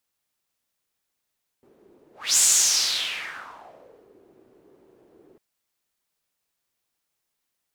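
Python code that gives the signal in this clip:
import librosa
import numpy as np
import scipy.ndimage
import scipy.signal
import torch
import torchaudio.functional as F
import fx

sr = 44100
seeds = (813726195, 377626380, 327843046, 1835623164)

y = fx.whoosh(sr, seeds[0], length_s=3.75, peak_s=0.75, rise_s=0.28, fall_s=1.87, ends_hz=380.0, peak_hz=7400.0, q=4.0, swell_db=39.0)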